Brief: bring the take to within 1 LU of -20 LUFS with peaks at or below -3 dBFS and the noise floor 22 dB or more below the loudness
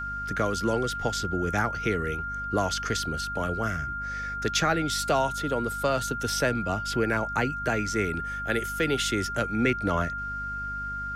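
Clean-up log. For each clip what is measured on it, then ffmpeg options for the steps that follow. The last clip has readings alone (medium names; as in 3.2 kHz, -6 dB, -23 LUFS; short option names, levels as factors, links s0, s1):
hum 50 Hz; highest harmonic 250 Hz; hum level -38 dBFS; steady tone 1.4 kHz; tone level -31 dBFS; loudness -27.5 LUFS; peak level -12.5 dBFS; loudness target -20.0 LUFS
-> -af "bandreject=f=50:t=h:w=4,bandreject=f=100:t=h:w=4,bandreject=f=150:t=h:w=4,bandreject=f=200:t=h:w=4,bandreject=f=250:t=h:w=4"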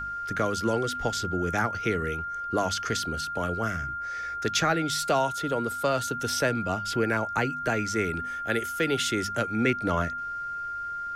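hum not found; steady tone 1.4 kHz; tone level -31 dBFS
-> -af "bandreject=f=1400:w=30"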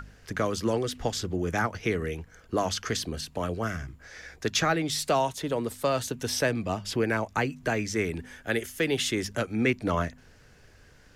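steady tone not found; loudness -29.0 LUFS; peak level -13.5 dBFS; loudness target -20.0 LUFS
-> -af "volume=2.82"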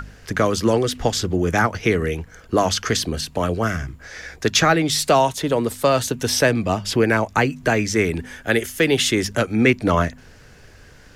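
loudness -20.0 LUFS; peak level -4.5 dBFS; noise floor -47 dBFS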